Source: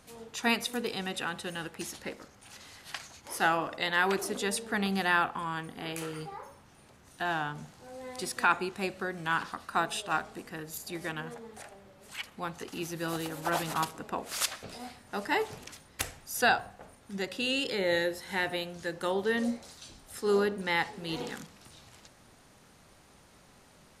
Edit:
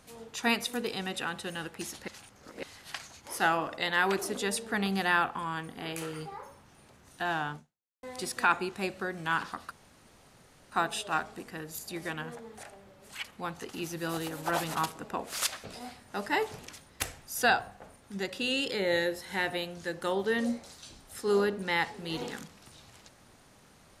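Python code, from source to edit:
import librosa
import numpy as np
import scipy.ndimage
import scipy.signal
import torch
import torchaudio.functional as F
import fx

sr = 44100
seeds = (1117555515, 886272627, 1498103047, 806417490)

y = fx.edit(x, sr, fx.reverse_span(start_s=2.08, length_s=0.55),
    fx.fade_out_span(start_s=7.55, length_s=0.48, curve='exp'),
    fx.insert_room_tone(at_s=9.71, length_s=1.01), tone=tone)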